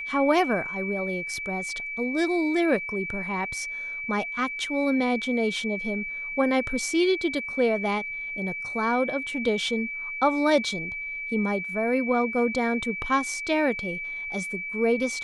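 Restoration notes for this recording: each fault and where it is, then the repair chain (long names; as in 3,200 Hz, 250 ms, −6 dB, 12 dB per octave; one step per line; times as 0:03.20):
whistle 2,300 Hz −31 dBFS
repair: notch filter 2,300 Hz, Q 30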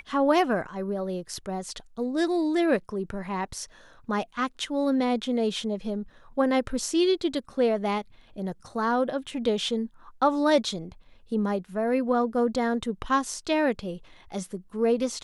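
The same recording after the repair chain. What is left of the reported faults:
none of them is left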